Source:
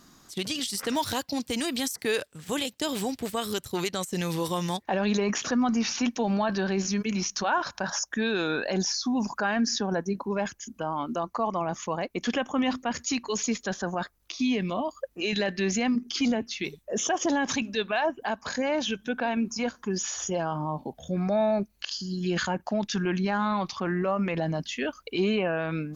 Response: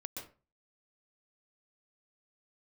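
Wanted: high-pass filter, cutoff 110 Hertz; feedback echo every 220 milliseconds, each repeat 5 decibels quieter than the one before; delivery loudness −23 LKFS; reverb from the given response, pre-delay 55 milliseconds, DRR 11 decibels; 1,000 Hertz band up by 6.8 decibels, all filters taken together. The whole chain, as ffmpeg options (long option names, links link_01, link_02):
-filter_complex "[0:a]highpass=110,equalizer=frequency=1000:width_type=o:gain=8.5,aecho=1:1:220|440|660|880|1100|1320|1540:0.562|0.315|0.176|0.0988|0.0553|0.031|0.0173,asplit=2[link_01][link_02];[1:a]atrim=start_sample=2205,adelay=55[link_03];[link_02][link_03]afir=irnorm=-1:irlink=0,volume=-9dB[link_04];[link_01][link_04]amix=inputs=2:normalize=0,volume=1.5dB"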